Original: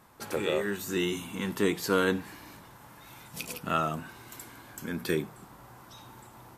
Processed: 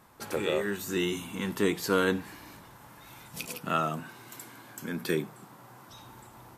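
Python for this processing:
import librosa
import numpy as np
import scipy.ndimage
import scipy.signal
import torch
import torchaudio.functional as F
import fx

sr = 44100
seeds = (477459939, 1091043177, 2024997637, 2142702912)

y = fx.highpass(x, sr, hz=110.0, slope=24, at=(3.46, 5.9))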